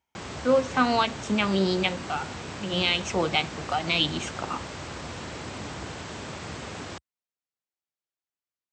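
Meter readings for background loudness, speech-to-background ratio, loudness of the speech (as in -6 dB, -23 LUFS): -37.0 LUFS, 11.0 dB, -26.0 LUFS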